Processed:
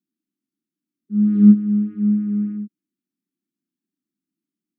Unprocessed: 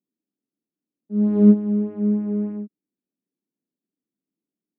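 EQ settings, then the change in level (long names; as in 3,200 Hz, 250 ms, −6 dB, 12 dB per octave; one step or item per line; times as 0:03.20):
high-pass filter 150 Hz
linear-phase brick-wall band-stop 390–1,100 Hz
low-shelf EQ 320 Hz +7 dB
−1.0 dB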